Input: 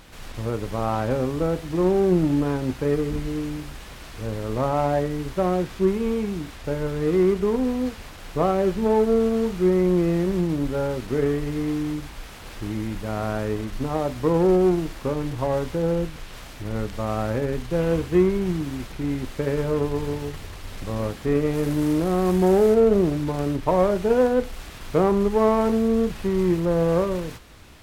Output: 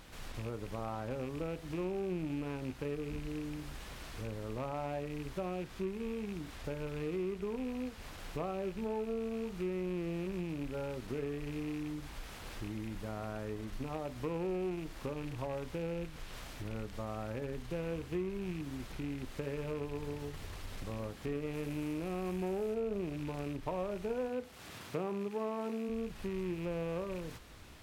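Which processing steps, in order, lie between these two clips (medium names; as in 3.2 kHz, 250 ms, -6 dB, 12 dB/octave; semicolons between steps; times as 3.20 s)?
rattle on loud lows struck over -27 dBFS, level -26 dBFS; compression 2.5:1, threshold -33 dBFS, peak gain reduction 13 dB; 24.28–25.88 s: high-pass 68 Hz -> 190 Hz 24 dB/octave; trim -6.5 dB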